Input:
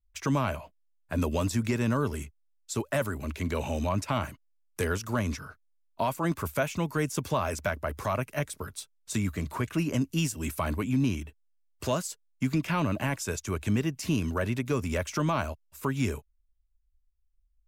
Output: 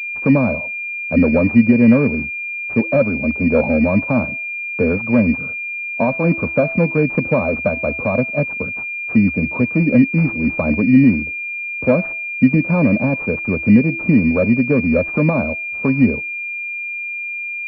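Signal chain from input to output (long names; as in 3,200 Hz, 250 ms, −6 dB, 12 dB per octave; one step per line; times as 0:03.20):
hum removal 330.6 Hz, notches 16
hollow resonant body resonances 230/500 Hz, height 17 dB, ringing for 30 ms
0:03.13–0:03.67: dynamic equaliser 710 Hz, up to +6 dB, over −34 dBFS, Q 1.8
switching amplifier with a slow clock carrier 2,400 Hz
level +2.5 dB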